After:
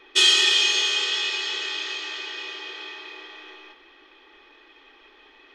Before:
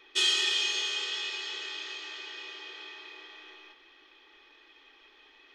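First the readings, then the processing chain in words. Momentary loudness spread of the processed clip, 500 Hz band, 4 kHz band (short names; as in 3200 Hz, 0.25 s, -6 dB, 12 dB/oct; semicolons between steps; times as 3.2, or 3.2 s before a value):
21 LU, +9.0 dB, +9.0 dB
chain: mismatched tape noise reduction decoder only; gain +9 dB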